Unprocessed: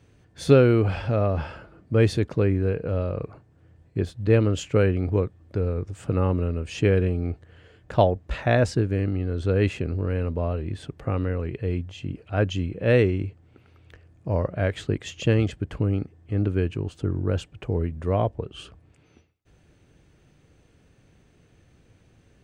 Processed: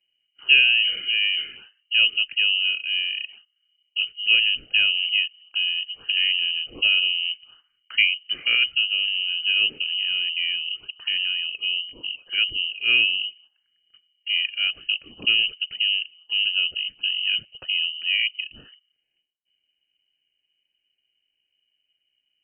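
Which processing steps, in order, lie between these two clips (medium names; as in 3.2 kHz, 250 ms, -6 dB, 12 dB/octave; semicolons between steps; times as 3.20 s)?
touch-sensitive phaser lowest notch 290 Hz, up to 2 kHz, full sweep at -26.5 dBFS; gate -49 dBFS, range -15 dB; frequency inversion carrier 3 kHz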